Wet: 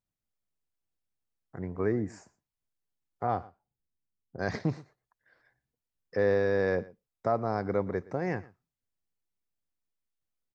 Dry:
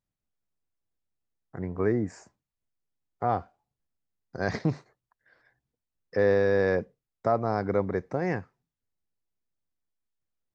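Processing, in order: 3.27–4.39 s: level-controlled noise filter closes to 340 Hz, open at -24.5 dBFS; delay 118 ms -21 dB; trim -3 dB

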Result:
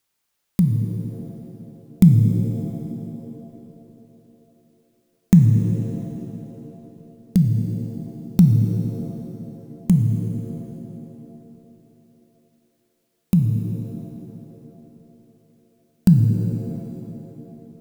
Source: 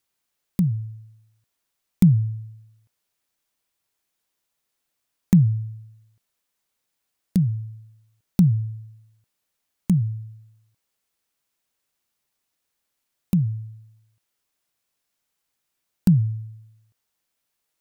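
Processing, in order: pitch-shifted reverb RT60 3 s, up +7 st, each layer -8 dB, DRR 6 dB; trim +3 dB

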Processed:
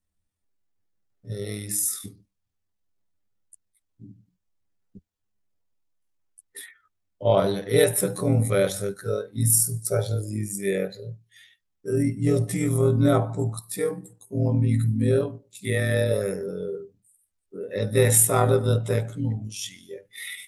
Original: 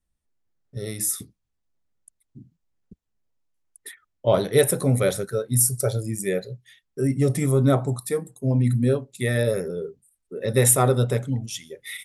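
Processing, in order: granular stretch 1.7×, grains 49 ms

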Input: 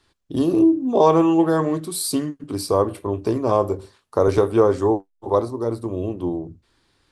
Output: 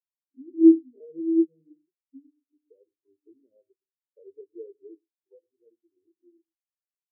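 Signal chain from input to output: spectral gate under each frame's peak -15 dB strong; low-pass that closes with the level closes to 400 Hz, closed at -17 dBFS; high-pass 180 Hz 6 dB/octave; in parallel at -4 dB: wavefolder -13.5 dBFS; on the sum: echo from a far wall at 20 m, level -12 dB; on a send at -10.5 dB: reverberation RT60 0.65 s, pre-delay 36 ms; on the sum: spectral contrast expander 4:1

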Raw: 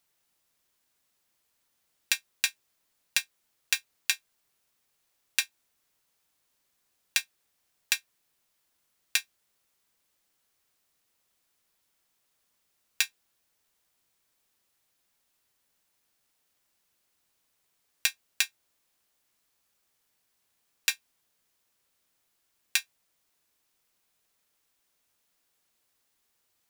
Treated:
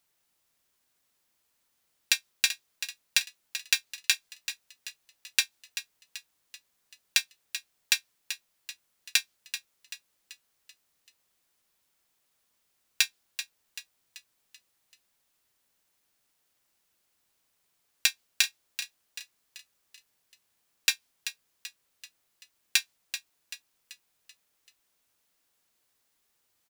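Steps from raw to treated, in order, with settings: dynamic bell 4.5 kHz, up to +5 dB, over -42 dBFS, Q 1; frequency-shifting echo 385 ms, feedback 47%, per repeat +38 Hz, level -11 dB

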